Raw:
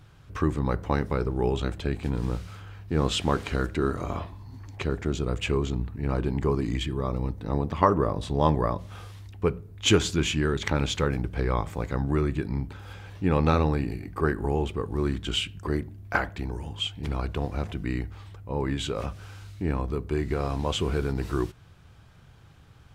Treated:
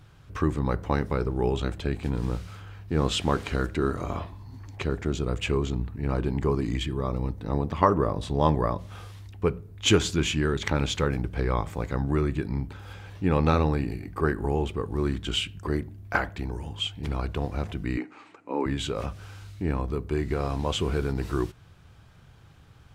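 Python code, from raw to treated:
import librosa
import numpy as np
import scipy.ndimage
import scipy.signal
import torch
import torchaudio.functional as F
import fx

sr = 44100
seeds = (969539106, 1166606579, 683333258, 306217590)

y = fx.cabinet(x, sr, low_hz=240.0, low_slope=24, high_hz=8100.0, hz=(290.0, 890.0, 1300.0, 2400.0, 3400.0, 5300.0), db=(9, 3, 5, 8, -8, -5), at=(17.97, 18.66))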